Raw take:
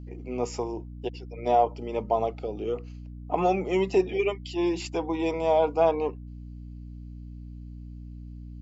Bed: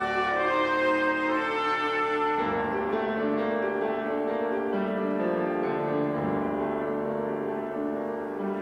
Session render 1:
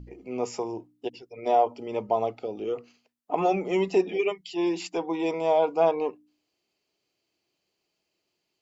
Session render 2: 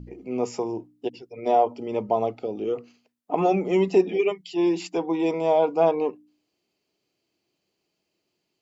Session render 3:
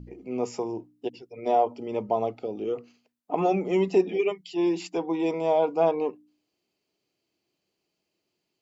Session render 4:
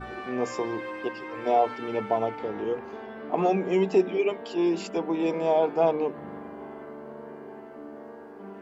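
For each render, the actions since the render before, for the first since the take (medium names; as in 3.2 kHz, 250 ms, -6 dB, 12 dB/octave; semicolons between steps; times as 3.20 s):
de-hum 60 Hz, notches 5
peaking EQ 200 Hz +6 dB 2.4 oct
trim -2.5 dB
add bed -12 dB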